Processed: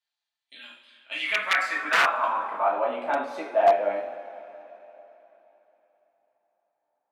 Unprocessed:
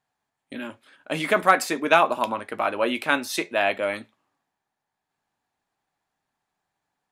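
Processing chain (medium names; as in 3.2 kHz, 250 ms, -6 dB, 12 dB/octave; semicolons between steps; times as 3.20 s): two-slope reverb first 0.46 s, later 3.6 s, from -18 dB, DRR -5.5 dB; integer overflow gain 4 dB; band-pass sweep 3.8 kHz -> 700 Hz, 0.81–2.96 s; trim -2 dB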